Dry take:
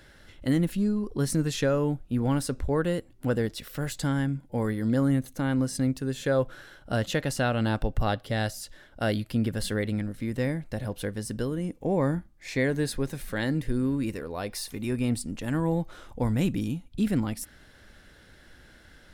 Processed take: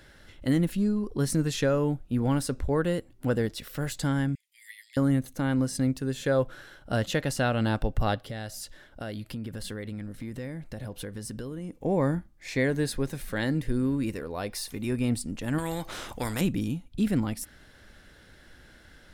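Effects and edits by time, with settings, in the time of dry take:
0:04.35–0:04.97: Butterworth high-pass 1,900 Hz 96 dB per octave
0:08.15–0:11.73: downward compressor 4 to 1, threshold −33 dBFS
0:15.58–0:16.41: every bin compressed towards the loudest bin 2 to 1

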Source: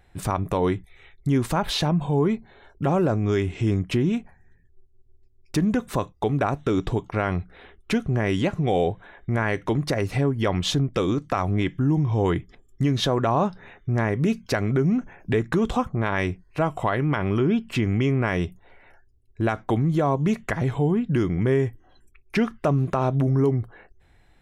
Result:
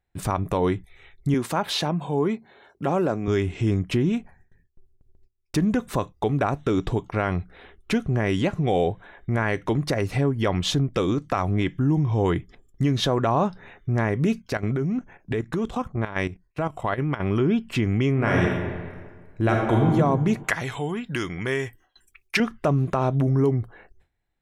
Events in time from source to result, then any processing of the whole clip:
0:01.34–0:03.28: Bessel high-pass filter 210 Hz
0:14.40–0:17.20: output level in coarse steps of 12 dB
0:18.13–0:19.89: thrown reverb, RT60 1.6 s, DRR −2 dB
0:20.44–0:22.40: tilt shelving filter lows −9.5 dB, about 850 Hz
whole clip: noise gate with hold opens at −46 dBFS

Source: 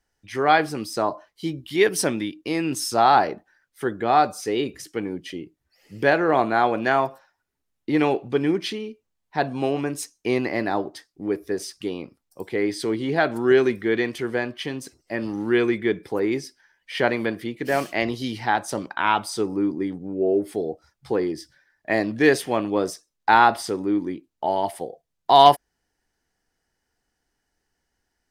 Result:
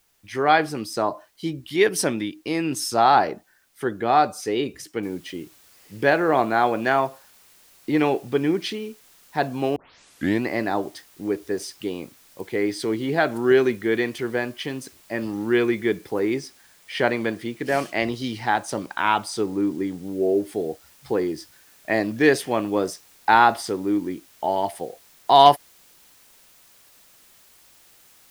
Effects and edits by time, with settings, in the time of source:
0:05.03: noise floor change −66 dB −54 dB
0:09.76: tape start 0.68 s
0:16.34–0:20.05: parametric band 14,000 Hz −11 dB 0.21 octaves

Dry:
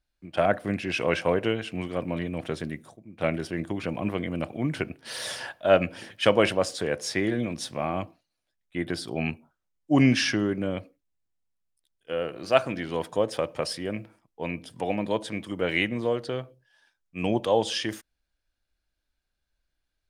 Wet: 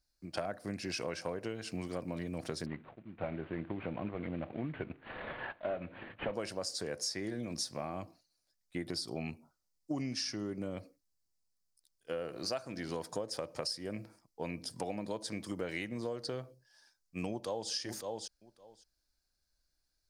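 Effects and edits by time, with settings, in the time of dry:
0:02.66–0:06.34: variable-slope delta modulation 16 kbit/s
0:08.83–0:10.73: notch filter 1,600 Hz, Q 7.6
0:17.29–0:17.71: delay throw 560 ms, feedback 10%, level −13 dB
whole clip: high shelf with overshoot 3,900 Hz +6.5 dB, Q 3; downward compressor 10 to 1, threshold −31 dBFS; level −3 dB

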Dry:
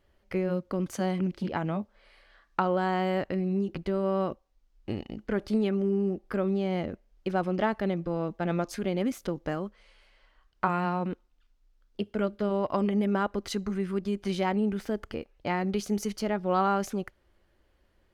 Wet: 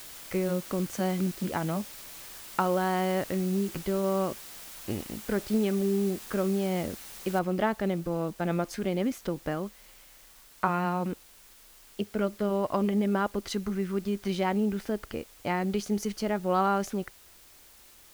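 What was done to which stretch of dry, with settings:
0:07.39: noise floor change −45 dB −55 dB

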